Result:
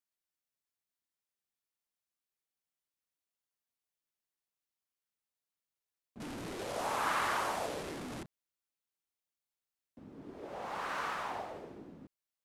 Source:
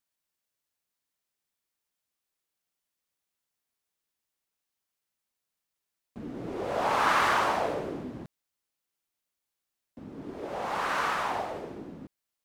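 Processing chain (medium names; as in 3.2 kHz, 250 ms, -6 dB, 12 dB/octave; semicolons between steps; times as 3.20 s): 6.20–8.23 s: one-bit delta coder 64 kbps, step -28 dBFS; trim -8.5 dB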